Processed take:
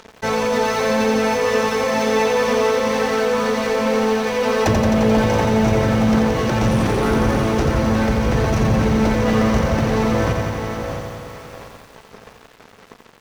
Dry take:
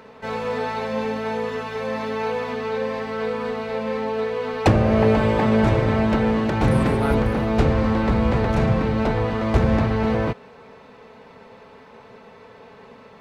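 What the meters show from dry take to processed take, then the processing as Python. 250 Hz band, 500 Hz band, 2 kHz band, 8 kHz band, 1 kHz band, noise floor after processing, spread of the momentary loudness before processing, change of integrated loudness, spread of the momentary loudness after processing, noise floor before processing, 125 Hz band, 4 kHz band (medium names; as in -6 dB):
+3.5 dB, +4.5 dB, +5.5 dB, no reading, +4.5 dB, -47 dBFS, 9 LU, +3.5 dB, 7 LU, -47 dBFS, +1.5 dB, +8.0 dB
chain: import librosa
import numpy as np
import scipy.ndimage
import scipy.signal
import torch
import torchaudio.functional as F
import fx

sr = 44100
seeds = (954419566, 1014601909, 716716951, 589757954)

p1 = fx.peak_eq(x, sr, hz=5900.0, db=13.5, octaves=0.36)
p2 = fx.dereverb_blind(p1, sr, rt60_s=0.78)
p3 = fx.over_compress(p2, sr, threshold_db=-28.0, ratio=-1.0)
p4 = p2 + (p3 * librosa.db_to_amplitude(3.0))
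p5 = fx.echo_feedback(p4, sr, ms=678, feedback_pct=53, wet_db=-13.0)
p6 = np.sign(p5) * np.maximum(np.abs(p5) - 10.0 ** (-32.5 / 20.0), 0.0)
p7 = p6 + fx.echo_single(p6, sr, ms=640, db=-11.0, dry=0)
p8 = 10.0 ** (-14.0 / 20.0) * np.tanh(p7 / 10.0 ** (-14.0 / 20.0))
p9 = fx.echo_crushed(p8, sr, ms=87, feedback_pct=80, bits=8, wet_db=-5.0)
y = p9 * librosa.db_to_amplitude(1.5)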